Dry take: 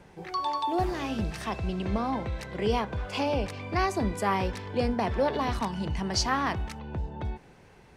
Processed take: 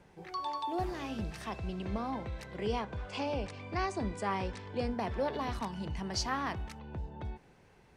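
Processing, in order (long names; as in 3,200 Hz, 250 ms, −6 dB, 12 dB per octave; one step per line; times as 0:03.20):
0:02.67–0:04.95: Butterworth low-pass 9,600 Hz 72 dB per octave
level −7 dB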